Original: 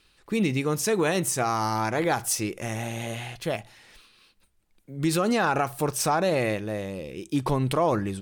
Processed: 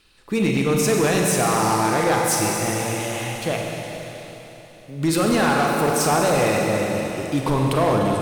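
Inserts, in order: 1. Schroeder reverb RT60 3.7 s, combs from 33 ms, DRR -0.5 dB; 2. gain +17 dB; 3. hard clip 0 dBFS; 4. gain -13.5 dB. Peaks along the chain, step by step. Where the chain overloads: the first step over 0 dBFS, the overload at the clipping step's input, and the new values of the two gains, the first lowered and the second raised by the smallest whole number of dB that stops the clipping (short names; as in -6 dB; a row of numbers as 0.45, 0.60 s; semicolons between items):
-8.0, +9.0, 0.0, -13.5 dBFS; step 2, 9.0 dB; step 2 +8 dB, step 4 -4.5 dB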